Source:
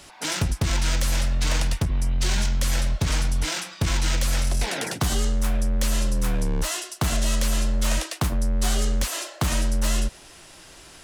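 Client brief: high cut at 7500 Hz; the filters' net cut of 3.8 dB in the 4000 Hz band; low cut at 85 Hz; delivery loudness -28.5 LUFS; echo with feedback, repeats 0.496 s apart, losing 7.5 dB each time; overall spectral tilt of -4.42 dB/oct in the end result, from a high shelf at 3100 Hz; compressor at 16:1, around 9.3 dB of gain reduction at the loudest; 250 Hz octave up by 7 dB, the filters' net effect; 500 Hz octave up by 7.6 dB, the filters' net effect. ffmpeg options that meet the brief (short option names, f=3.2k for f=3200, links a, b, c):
-af "highpass=85,lowpass=7.5k,equalizer=f=250:t=o:g=7.5,equalizer=f=500:t=o:g=7.5,highshelf=f=3.1k:g=4.5,equalizer=f=4k:t=o:g=-8.5,acompressor=threshold=-26dB:ratio=16,aecho=1:1:496|992|1488|1984|2480:0.422|0.177|0.0744|0.0312|0.0131,volume=2dB"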